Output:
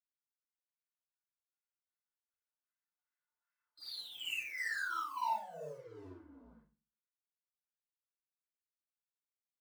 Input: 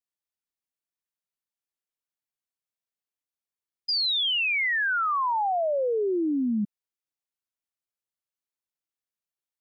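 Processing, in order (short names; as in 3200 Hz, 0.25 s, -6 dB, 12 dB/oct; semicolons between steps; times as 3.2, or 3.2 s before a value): octaver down 2 oct, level -5 dB; Doppler pass-by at 3.76, 5 m/s, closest 1.4 m; bell 1700 Hz +12 dB 0.66 oct; comb 1.9 ms, depth 65%; limiter -40.5 dBFS, peak gain reduction 22.5 dB; LFO band-pass sine 2.6 Hz 920–2300 Hz; sample leveller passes 1; formant shift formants -3 st; reverse echo 54 ms -3.5 dB; FDN reverb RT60 0.34 s, low-frequency decay 1.35×, high-frequency decay 0.85×, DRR -5 dB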